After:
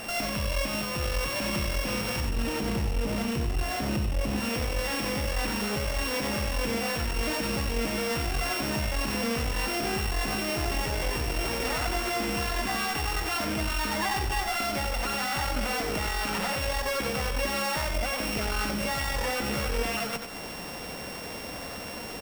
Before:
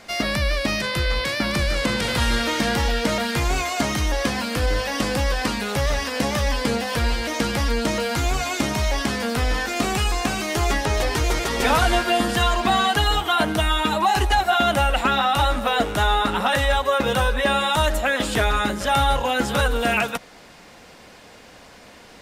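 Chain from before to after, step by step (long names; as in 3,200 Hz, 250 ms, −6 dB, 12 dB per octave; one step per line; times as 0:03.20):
samples sorted by size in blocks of 16 samples
0:02.20–0:04.40: low-shelf EQ 400 Hz +11.5 dB
downward compressor 6 to 1, threshold −30 dBFS, peak gain reduction 20 dB
brickwall limiter −26.5 dBFS, peak gain reduction 9.5 dB
asymmetric clip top −39.5 dBFS
multi-tap delay 69/92 ms −16.5/−6.5 dB
level +8 dB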